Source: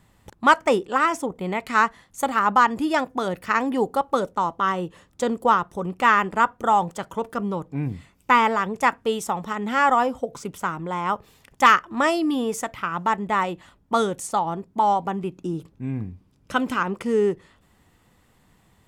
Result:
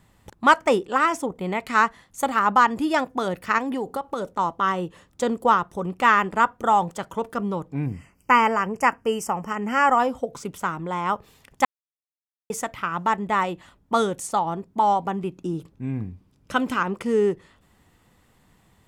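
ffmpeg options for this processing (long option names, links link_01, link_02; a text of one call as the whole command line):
ffmpeg -i in.wav -filter_complex "[0:a]asettb=1/sr,asplit=3[link_01][link_02][link_03];[link_01]atrim=end=3.584[link_04];[link_02]atrim=start=3.58:end=4.39,asetpts=PTS-STARTPTS,afade=type=in:duration=0.004:curve=qsin,afade=type=out:start_time=0.806:duration=0.004:curve=qsin,acompressor=threshold=-23dB:ratio=6:attack=3.2:release=140:knee=1:detection=peak[link_05];[link_03]atrim=start=4.386[link_06];[link_04][link_05]acrossfade=duration=0.004:curve1=hsin:curve2=qsin[link_07];[link_07][link_06]acrossfade=duration=0.004:curve1=qsin:curve2=hsin,asplit=3[link_08][link_09][link_10];[link_08]afade=type=out:start_time=7.86:duration=0.02[link_11];[link_09]asuperstop=centerf=3800:order=20:qfactor=2.7,afade=type=in:start_time=7.86:duration=0.02,afade=type=out:start_time=9.98:duration=0.02[link_12];[link_10]afade=type=in:start_time=9.98:duration=0.02[link_13];[link_11][link_12][link_13]amix=inputs=3:normalize=0,asplit=3[link_14][link_15][link_16];[link_14]atrim=end=11.65,asetpts=PTS-STARTPTS,afade=type=out:start_time=11.646:duration=0.004:curve=hsin[link_17];[link_15]atrim=start=11.65:end=12.5,asetpts=PTS-STARTPTS,volume=0[link_18];[link_16]atrim=start=12.5,asetpts=PTS-STARTPTS,afade=type=in:duration=0.004:curve=hsin[link_19];[link_17][link_18][link_19]concat=n=3:v=0:a=1" out.wav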